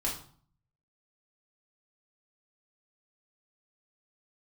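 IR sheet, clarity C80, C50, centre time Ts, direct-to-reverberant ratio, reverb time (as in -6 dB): 11.5 dB, 6.5 dB, 28 ms, -4.5 dB, 0.50 s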